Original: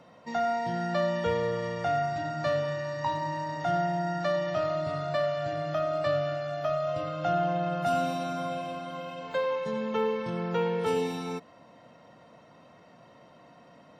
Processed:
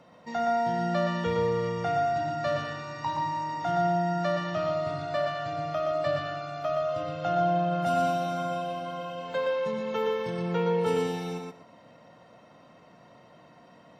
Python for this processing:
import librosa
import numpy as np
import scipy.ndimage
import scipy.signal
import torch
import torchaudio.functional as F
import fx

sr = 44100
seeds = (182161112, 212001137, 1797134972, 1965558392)

y = fx.high_shelf(x, sr, hz=6600.0, db=9.0, at=(9.88, 10.42))
y = fx.echo_feedback(y, sr, ms=120, feedback_pct=15, wet_db=-4.0)
y = y * librosa.db_to_amplitude(-1.0)